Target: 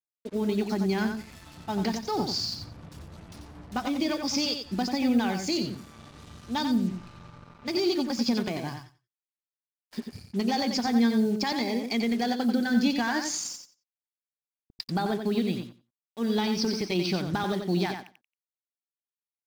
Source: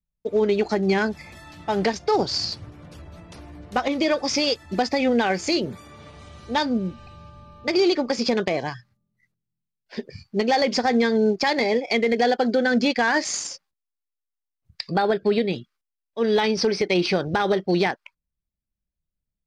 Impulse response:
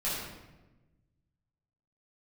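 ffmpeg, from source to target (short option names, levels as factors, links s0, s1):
-af "equalizer=f=250:t=o:w=1:g=5,equalizer=f=500:t=o:w=1:g=-11,equalizer=f=2000:t=o:w=1:g=-7,acrusher=bits=6:mix=0:aa=0.5,aecho=1:1:90|180|270:0.473|0.0804|0.0137,volume=0.631"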